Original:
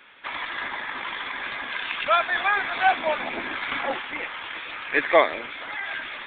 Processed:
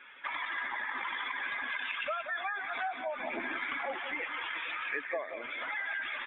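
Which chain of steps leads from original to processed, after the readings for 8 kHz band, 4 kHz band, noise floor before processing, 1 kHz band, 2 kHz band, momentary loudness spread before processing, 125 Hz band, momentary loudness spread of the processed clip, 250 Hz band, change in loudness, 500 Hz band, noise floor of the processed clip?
no reading, -10.5 dB, -37 dBFS, -12.0 dB, -8.0 dB, 12 LU, under -15 dB, 3 LU, -10.5 dB, -9.5 dB, -13.5 dB, -44 dBFS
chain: spectral contrast enhancement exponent 1.7; compression 16:1, threshold -31 dBFS, peak gain reduction 19.5 dB; on a send: delay 180 ms -9.5 dB; on the sum: trim -1.5 dB

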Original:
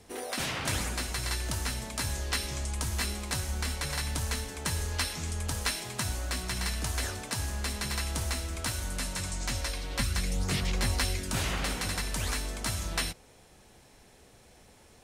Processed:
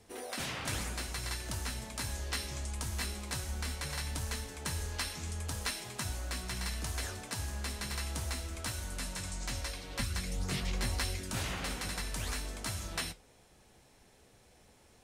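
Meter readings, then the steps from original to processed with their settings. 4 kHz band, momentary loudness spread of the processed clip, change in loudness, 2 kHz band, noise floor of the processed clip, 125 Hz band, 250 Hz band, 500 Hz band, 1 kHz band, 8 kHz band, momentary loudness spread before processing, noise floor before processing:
-5.0 dB, 3 LU, -5.0 dB, -5.0 dB, -63 dBFS, -5.0 dB, -5.0 dB, -5.0 dB, -5.0 dB, -5.5 dB, 3 LU, -57 dBFS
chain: flange 0.7 Hz, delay 8.5 ms, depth 9.7 ms, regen -65%; trim -1 dB

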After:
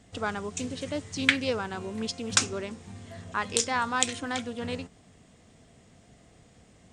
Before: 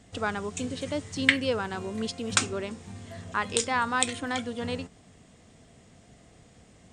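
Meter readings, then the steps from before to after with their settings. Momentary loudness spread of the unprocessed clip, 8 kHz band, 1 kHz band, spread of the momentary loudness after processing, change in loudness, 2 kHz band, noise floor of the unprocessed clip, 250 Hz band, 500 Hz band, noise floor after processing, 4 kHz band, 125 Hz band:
13 LU, +1.5 dB, -1.0 dB, 13 LU, -0.5 dB, -1.5 dB, -56 dBFS, -1.0 dB, -1.5 dB, -58 dBFS, +0.5 dB, -1.5 dB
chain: dynamic bell 5.8 kHz, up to +7 dB, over -46 dBFS, Q 1.6; loudspeaker Doppler distortion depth 0.14 ms; trim -1.5 dB

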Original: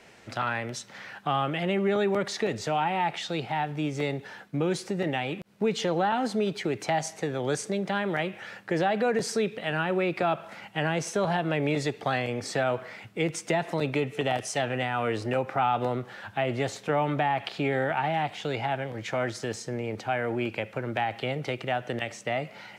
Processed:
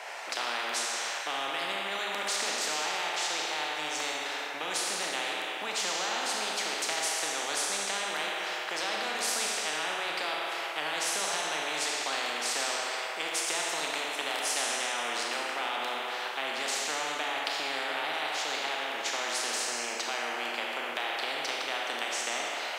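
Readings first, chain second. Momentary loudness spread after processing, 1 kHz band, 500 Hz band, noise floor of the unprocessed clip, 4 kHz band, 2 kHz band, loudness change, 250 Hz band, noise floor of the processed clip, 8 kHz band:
3 LU, -4.0 dB, -9.5 dB, -49 dBFS, +7.0 dB, +1.5 dB, -1.5 dB, -15.5 dB, -36 dBFS, +9.0 dB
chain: ladder high-pass 670 Hz, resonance 60%; Schroeder reverb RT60 1.5 s, combs from 26 ms, DRR 0 dB; spectrum-flattening compressor 4:1; trim +2 dB

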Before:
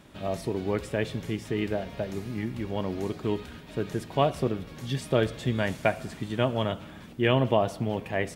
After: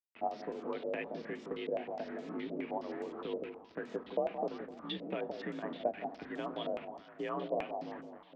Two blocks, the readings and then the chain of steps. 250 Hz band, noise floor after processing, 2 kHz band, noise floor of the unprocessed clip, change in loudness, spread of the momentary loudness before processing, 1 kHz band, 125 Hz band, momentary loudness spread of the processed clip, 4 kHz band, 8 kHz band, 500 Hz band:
-11.5 dB, -57 dBFS, -12.0 dB, -45 dBFS, -10.5 dB, 9 LU, -7.5 dB, -23.5 dB, 6 LU, -11.5 dB, under -20 dB, -9.0 dB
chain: fade out at the end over 1.36 s; high-pass 160 Hz 24 dB/octave; gate -40 dBFS, range -11 dB; compression 3:1, threshold -36 dBFS, peak gain reduction 13.5 dB; square tremolo 3.2 Hz, depth 60%, duty 90%; flange 0.3 Hz, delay 6.7 ms, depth 5.5 ms, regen -67%; bit crusher 9-bit; frequency shift +49 Hz; distance through air 260 m; echo whose repeats swap between lows and highs 170 ms, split 830 Hz, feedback 57%, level -5.5 dB; step-sequenced low-pass 9.6 Hz 570–7500 Hz; trim +1 dB

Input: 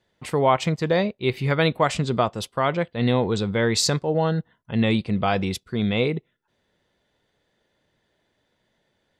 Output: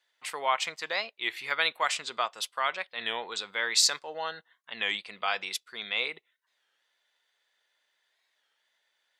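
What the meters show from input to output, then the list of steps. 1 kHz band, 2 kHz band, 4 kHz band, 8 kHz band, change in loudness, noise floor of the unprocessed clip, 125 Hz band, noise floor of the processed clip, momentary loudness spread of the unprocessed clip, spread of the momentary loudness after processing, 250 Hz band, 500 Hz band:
-6.5 dB, -1.0 dB, 0.0 dB, 0.0 dB, -7.0 dB, -72 dBFS, under -35 dB, -77 dBFS, 5 LU, 11 LU, -28.0 dB, -15.5 dB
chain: high-pass 1.3 kHz 12 dB/octave; warped record 33 1/3 rpm, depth 160 cents

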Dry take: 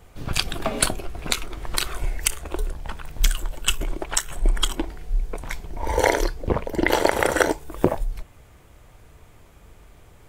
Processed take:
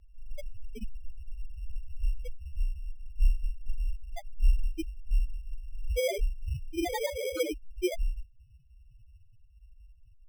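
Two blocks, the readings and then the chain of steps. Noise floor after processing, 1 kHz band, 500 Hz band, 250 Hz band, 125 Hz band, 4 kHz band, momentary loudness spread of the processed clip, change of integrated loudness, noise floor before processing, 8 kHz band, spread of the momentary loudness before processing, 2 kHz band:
-58 dBFS, -18.5 dB, -9.5 dB, -10.5 dB, -6.5 dB, -17.0 dB, 16 LU, -10.0 dB, -51 dBFS, -19.5 dB, 12 LU, -17.0 dB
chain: loudest bins only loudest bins 1; sample-and-hold 16×; trim +2.5 dB

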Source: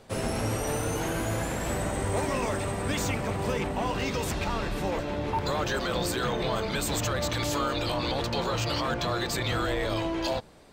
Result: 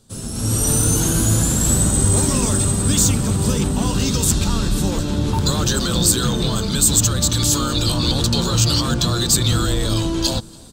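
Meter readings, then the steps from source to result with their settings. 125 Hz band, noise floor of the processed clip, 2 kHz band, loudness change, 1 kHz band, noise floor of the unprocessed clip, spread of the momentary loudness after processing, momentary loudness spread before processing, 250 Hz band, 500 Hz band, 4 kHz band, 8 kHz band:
+14.0 dB, -29 dBFS, +1.5 dB, +12.0 dB, +2.0 dB, -33 dBFS, 5 LU, 2 LU, +11.5 dB, +3.0 dB, +12.5 dB, +20.0 dB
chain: FFT filter 220 Hz 0 dB, 660 Hz -16 dB, 1.4 kHz -9 dB, 2.1 kHz -18 dB, 3.6 kHz -1 dB, 5.4 kHz +1 dB, 7.9 kHz +8 dB, 14 kHz +2 dB; echo from a far wall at 49 m, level -25 dB; level rider gain up to 14 dB; trim +1 dB

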